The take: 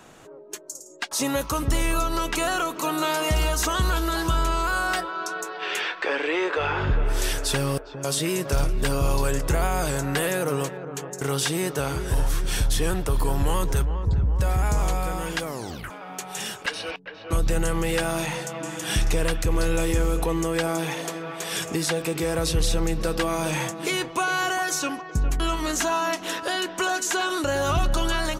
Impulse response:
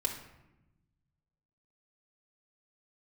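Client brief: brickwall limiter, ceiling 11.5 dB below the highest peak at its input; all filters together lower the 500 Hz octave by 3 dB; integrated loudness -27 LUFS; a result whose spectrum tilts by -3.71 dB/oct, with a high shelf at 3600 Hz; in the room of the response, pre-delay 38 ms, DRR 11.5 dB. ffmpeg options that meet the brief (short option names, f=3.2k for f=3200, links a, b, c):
-filter_complex "[0:a]equalizer=f=500:t=o:g=-4,highshelf=f=3.6k:g=7,alimiter=limit=-19.5dB:level=0:latency=1,asplit=2[a][b];[1:a]atrim=start_sample=2205,adelay=38[c];[b][c]afir=irnorm=-1:irlink=0,volume=-15dB[d];[a][d]amix=inputs=2:normalize=0,volume=1.5dB"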